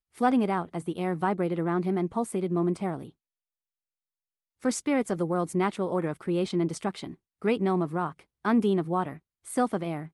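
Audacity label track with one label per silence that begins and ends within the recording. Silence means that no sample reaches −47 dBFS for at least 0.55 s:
3.100000	4.620000	silence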